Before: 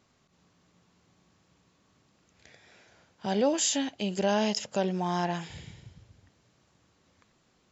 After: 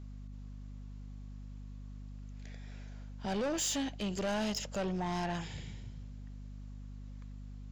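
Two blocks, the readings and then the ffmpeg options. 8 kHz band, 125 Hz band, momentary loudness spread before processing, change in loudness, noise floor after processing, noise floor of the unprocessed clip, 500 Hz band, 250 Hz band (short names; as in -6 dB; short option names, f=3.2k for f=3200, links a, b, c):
n/a, -2.0 dB, 12 LU, -10.5 dB, -46 dBFS, -69 dBFS, -8.0 dB, -5.5 dB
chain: -af "aeval=exprs='val(0)+0.00708*(sin(2*PI*50*n/s)+sin(2*PI*2*50*n/s)/2+sin(2*PI*3*50*n/s)/3+sin(2*PI*4*50*n/s)/4+sin(2*PI*5*50*n/s)/5)':c=same,asoftclip=type=tanh:threshold=-28.5dB,volume=-1.5dB"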